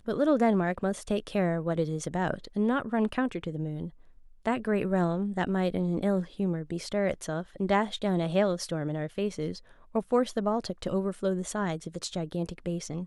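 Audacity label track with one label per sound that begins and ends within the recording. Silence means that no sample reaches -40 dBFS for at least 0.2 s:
4.460000	9.590000	sound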